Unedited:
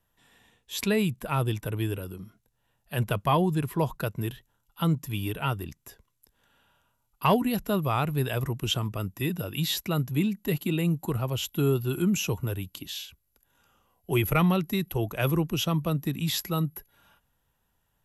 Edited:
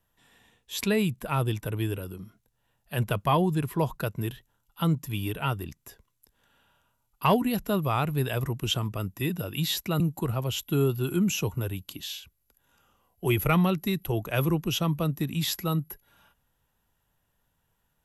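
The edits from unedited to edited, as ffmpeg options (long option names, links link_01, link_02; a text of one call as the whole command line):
ffmpeg -i in.wav -filter_complex "[0:a]asplit=2[link_01][link_02];[link_01]atrim=end=10.002[link_03];[link_02]atrim=start=10.858[link_04];[link_03][link_04]acrossfade=duration=0.004:curve1=hsin:curve2=hsin" out.wav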